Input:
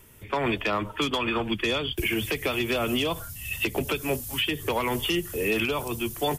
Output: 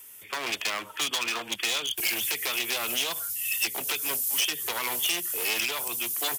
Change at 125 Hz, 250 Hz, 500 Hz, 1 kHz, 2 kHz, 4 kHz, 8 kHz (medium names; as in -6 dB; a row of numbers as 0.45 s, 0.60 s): -20.0 dB, -15.0 dB, -11.5 dB, -5.0 dB, -1.0 dB, +2.0 dB, +10.0 dB